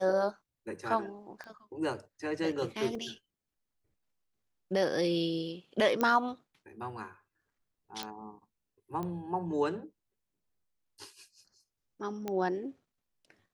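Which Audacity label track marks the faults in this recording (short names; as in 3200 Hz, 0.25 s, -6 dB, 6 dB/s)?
1.440000	1.440000	pop -32 dBFS
2.950000	2.950000	gap 2.5 ms
6.010000	6.010000	pop -16 dBFS
8.030000	8.030000	pop -20 dBFS
9.030000	9.030000	pop -25 dBFS
12.280000	12.280000	pop -21 dBFS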